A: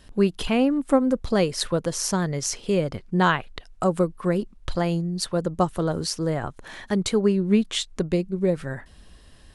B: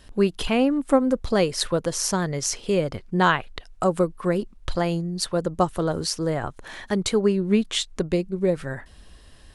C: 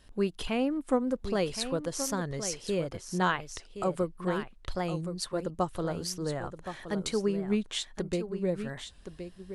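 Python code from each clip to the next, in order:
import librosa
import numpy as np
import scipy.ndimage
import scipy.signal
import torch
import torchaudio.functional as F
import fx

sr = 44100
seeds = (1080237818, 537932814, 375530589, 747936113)

y1 = fx.peak_eq(x, sr, hz=180.0, db=-3.0, octaves=1.3)
y1 = y1 * 10.0 ** (1.5 / 20.0)
y2 = y1 + 10.0 ** (-10.0 / 20.0) * np.pad(y1, (int(1070 * sr / 1000.0), 0))[:len(y1)]
y2 = fx.record_warp(y2, sr, rpm=45.0, depth_cents=100.0)
y2 = y2 * 10.0 ** (-8.5 / 20.0)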